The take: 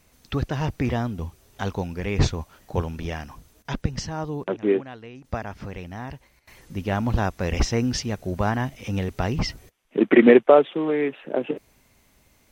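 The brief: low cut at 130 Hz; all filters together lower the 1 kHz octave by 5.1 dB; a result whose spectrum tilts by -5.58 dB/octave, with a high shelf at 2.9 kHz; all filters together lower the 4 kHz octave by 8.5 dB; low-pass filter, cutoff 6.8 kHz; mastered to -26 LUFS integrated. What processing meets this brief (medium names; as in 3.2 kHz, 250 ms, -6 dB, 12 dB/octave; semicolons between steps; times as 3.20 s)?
high-pass 130 Hz; low-pass 6.8 kHz; peaking EQ 1 kHz -6.5 dB; treble shelf 2.9 kHz -7.5 dB; peaking EQ 4 kHz -4 dB; trim -0.5 dB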